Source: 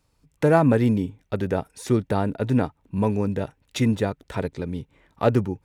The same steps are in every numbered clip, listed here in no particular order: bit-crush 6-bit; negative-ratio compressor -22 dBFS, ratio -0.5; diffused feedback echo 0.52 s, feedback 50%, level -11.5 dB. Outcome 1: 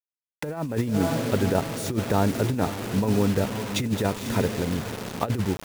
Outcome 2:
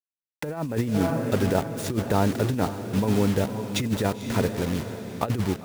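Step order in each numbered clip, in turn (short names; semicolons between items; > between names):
diffused feedback echo > bit-crush > negative-ratio compressor; bit-crush > diffused feedback echo > negative-ratio compressor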